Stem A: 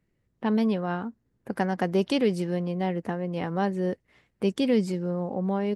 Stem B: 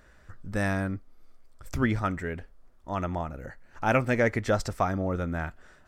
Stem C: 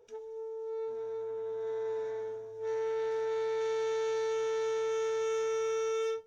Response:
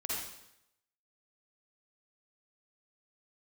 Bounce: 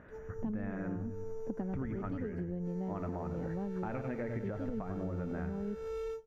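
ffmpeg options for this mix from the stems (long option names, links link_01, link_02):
-filter_complex "[0:a]tiltshelf=frequency=740:gain=7,volume=-10dB[link_01];[1:a]lowpass=frequency=2600:width=0.5412,lowpass=frequency=2600:width=1.3066,bandreject=frequency=166.4:width_type=h:width=4,bandreject=frequency=332.8:width_type=h:width=4,bandreject=frequency=499.2:width_type=h:width=4,bandreject=frequency=665.6:width_type=h:width=4,bandreject=frequency=832:width_type=h:width=4,bandreject=frequency=998.4:width_type=h:width=4,bandreject=frequency=1164.8:width_type=h:width=4,bandreject=frequency=1331.2:width_type=h:width=4,bandreject=frequency=1497.6:width_type=h:width=4,bandreject=frequency=1664:width_type=h:width=4,bandreject=frequency=1830.4:width_type=h:width=4,bandreject=frequency=1996.8:width_type=h:width=4,bandreject=frequency=2163.2:width_type=h:width=4,bandreject=frequency=2329.6:width_type=h:width=4,bandreject=frequency=2496:width_type=h:width=4,bandreject=frequency=2662.4:width_type=h:width=4,bandreject=frequency=2828.8:width_type=h:width=4,bandreject=frequency=2995.2:width_type=h:width=4,bandreject=frequency=3161.6:width_type=h:width=4,bandreject=frequency=3328:width_type=h:width=4,bandreject=frequency=3494.4:width_type=h:width=4,bandreject=frequency=3660.8:width_type=h:width=4,bandreject=frequency=3827.2:width_type=h:width=4,bandreject=frequency=3993.6:width_type=h:width=4,bandreject=frequency=4160:width_type=h:width=4,bandreject=frequency=4326.4:width_type=h:width=4,bandreject=frequency=4492.8:width_type=h:width=4,bandreject=frequency=4659.2:width_type=h:width=4,bandreject=frequency=4825.6:width_type=h:width=4,bandreject=frequency=4992:width_type=h:width=4,bandreject=frequency=5158.4:width_type=h:width=4,bandreject=frequency=5324.8:width_type=h:width=4,volume=2.5dB,asplit=2[link_02][link_03];[link_03]volume=-17dB[link_04];[2:a]lowshelf=frequency=200:gain=-9.5,acrusher=samples=7:mix=1:aa=0.000001,volume=-6dB[link_05];[link_01][link_02]amix=inputs=2:normalize=0,highpass=190,acompressor=threshold=-28dB:ratio=6,volume=0dB[link_06];[link_04]aecho=0:1:94|188|282|376|470|564:1|0.46|0.212|0.0973|0.0448|0.0206[link_07];[link_05][link_06][link_07]amix=inputs=3:normalize=0,aemphasis=mode=reproduction:type=riaa,acompressor=threshold=-34dB:ratio=10"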